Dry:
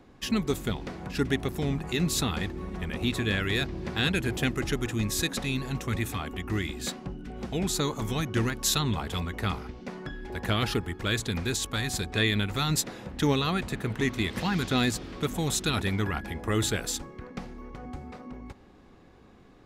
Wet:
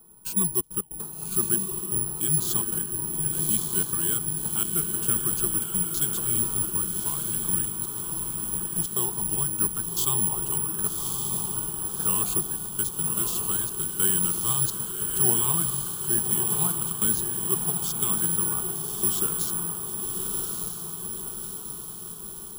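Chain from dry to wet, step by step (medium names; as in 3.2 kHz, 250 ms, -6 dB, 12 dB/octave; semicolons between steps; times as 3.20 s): tape speed -13%; trance gate "xxxxxx.x.x" 149 bpm -24 dB; echo that smears into a reverb 1167 ms, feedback 55%, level -3.5 dB; careless resampling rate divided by 4×, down filtered, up zero stuff; static phaser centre 400 Hz, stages 8; trim -3.5 dB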